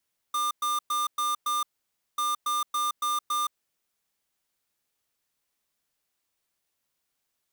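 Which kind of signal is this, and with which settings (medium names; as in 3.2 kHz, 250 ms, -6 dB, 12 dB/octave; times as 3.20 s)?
beep pattern square 1.2 kHz, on 0.17 s, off 0.11 s, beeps 5, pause 0.55 s, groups 2, -27 dBFS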